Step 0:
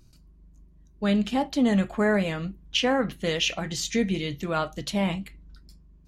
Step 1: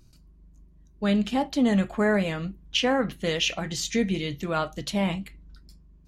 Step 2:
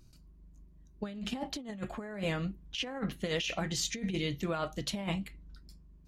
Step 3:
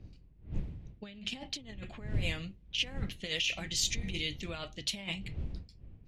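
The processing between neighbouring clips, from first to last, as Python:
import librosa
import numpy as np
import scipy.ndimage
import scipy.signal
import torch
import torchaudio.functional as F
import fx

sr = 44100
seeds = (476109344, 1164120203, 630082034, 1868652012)

y1 = x
y2 = fx.over_compress(y1, sr, threshold_db=-27.0, ratio=-0.5)
y2 = F.gain(torch.from_numpy(y2), -6.5).numpy()
y3 = fx.dmg_wind(y2, sr, seeds[0], corner_hz=100.0, level_db=-33.0)
y3 = fx.high_shelf_res(y3, sr, hz=1800.0, db=10.0, q=1.5)
y3 = fx.env_lowpass(y3, sr, base_hz=2400.0, full_db=-22.5)
y3 = F.gain(torch.from_numpy(y3), -8.0).numpy()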